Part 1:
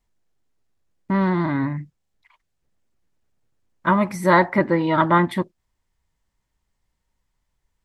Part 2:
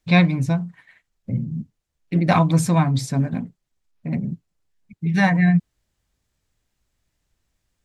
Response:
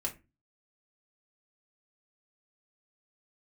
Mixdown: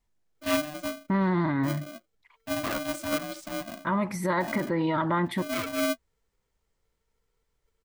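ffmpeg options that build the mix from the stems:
-filter_complex "[0:a]alimiter=limit=-15dB:level=0:latency=1:release=55,volume=-3dB[a];[1:a]flanger=delay=1.8:depth=10:regen=33:speed=1:shape=triangular,aeval=exprs='val(0)*sgn(sin(2*PI*450*n/s))':c=same,adelay=350,volume=-10dB[b];[a][b]amix=inputs=2:normalize=0"

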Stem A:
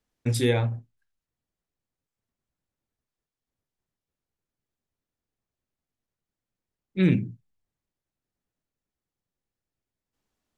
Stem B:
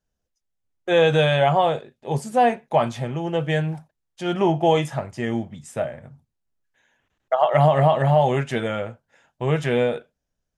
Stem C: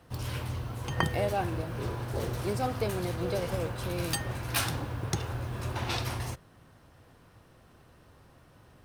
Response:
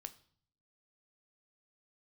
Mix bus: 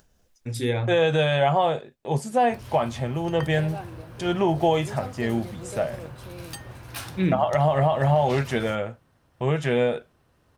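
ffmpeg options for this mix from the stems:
-filter_complex "[0:a]dynaudnorm=f=100:g=7:m=16dB,adelay=200,volume=-11dB[a];[1:a]agate=range=-34dB:threshold=-45dB:ratio=16:detection=peak,acompressor=mode=upward:threshold=-33dB:ratio=2.5,volume=-0.5dB[b];[2:a]adelay=2400,volume=-6.5dB[c];[a][b][c]amix=inputs=3:normalize=0,acompressor=mode=upward:threshold=-56dB:ratio=2.5,alimiter=limit=-11.5dB:level=0:latency=1:release=174"

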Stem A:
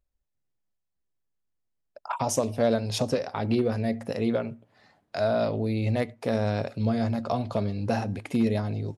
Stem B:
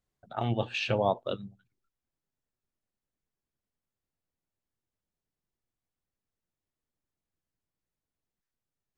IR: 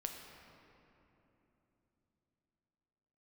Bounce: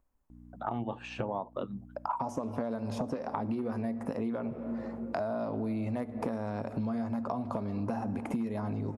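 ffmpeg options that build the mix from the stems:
-filter_complex "[0:a]volume=1dB,asplit=2[a][b];[b]volume=-11dB[c];[1:a]aeval=exprs='val(0)+0.00251*(sin(2*PI*60*n/s)+sin(2*PI*2*60*n/s)/2+sin(2*PI*3*60*n/s)/3+sin(2*PI*4*60*n/s)/4+sin(2*PI*5*60*n/s)/5)':c=same,adelay=300,volume=-1.5dB[d];[2:a]atrim=start_sample=2205[e];[c][e]afir=irnorm=-1:irlink=0[f];[a][d][f]amix=inputs=3:normalize=0,acrossover=split=1000|6000[g][h][i];[g]acompressor=threshold=-27dB:ratio=4[j];[h]acompressor=threshold=-41dB:ratio=4[k];[i]acompressor=threshold=-52dB:ratio=4[l];[j][k][l]amix=inputs=3:normalize=0,equalizer=f=250:t=o:w=1:g=10,equalizer=f=1k:t=o:w=1:g=12,equalizer=f=4k:t=o:w=1:g=-8,acompressor=threshold=-31dB:ratio=6"

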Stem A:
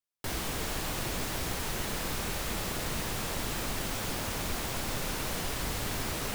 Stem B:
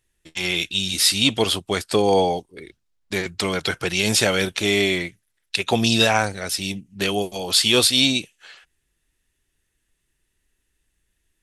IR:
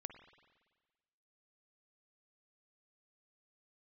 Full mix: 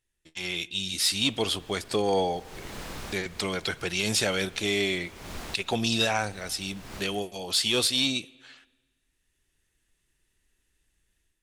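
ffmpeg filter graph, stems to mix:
-filter_complex "[0:a]adelay=850,volume=-4dB,asplit=2[a][b];[b]volume=-21dB[c];[1:a]dynaudnorm=f=590:g=3:m=8.5dB,highshelf=f=4.8k:g=6,volume=-11.5dB,asplit=3[d][e][f];[e]volume=-7dB[g];[f]apad=whole_len=317513[h];[a][h]sidechaincompress=threshold=-44dB:ratio=8:attack=7.8:release=260[i];[2:a]atrim=start_sample=2205[j];[c][g]amix=inputs=2:normalize=0[k];[k][j]afir=irnorm=-1:irlink=0[l];[i][d][l]amix=inputs=3:normalize=0,highshelf=f=9.9k:g=-10.5,asoftclip=type=tanh:threshold=-12.5dB"

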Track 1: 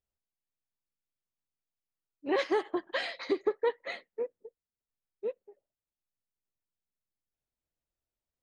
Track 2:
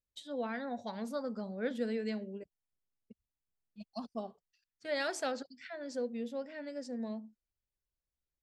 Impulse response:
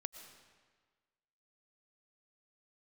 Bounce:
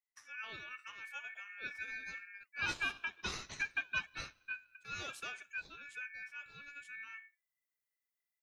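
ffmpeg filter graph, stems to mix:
-filter_complex "[0:a]aemphasis=mode=production:type=50kf,adelay=300,volume=-2.5dB,asplit=2[a][b];[b]volume=-14.5dB[c];[1:a]volume=-2dB[d];[2:a]atrim=start_sample=2205[e];[c][e]afir=irnorm=-1:irlink=0[f];[a][d][f]amix=inputs=3:normalize=0,flanger=delay=2.4:depth=9.7:regen=-80:speed=1.2:shape=triangular,aeval=exprs='val(0)*sin(2*PI*2000*n/s)':c=same"

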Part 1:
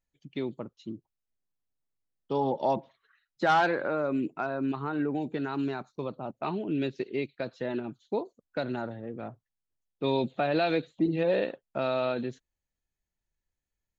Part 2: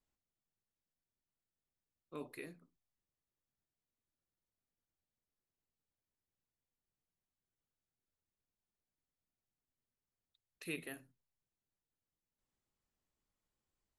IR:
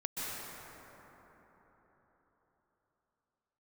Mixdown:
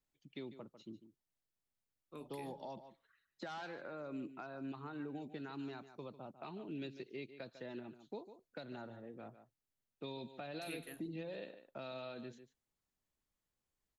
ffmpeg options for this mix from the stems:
-filter_complex "[0:a]lowshelf=f=220:g=-7.5,alimiter=limit=-22dB:level=0:latency=1:release=256,volume=-8dB,asplit=2[a][b];[b]volume=-14dB[c];[1:a]volume=-1.5dB[d];[c]aecho=0:1:147:1[e];[a][d][e]amix=inputs=3:normalize=0,acrossover=split=230|3000[f][g][h];[g]acompressor=threshold=-51dB:ratio=2[i];[f][i][h]amix=inputs=3:normalize=0"

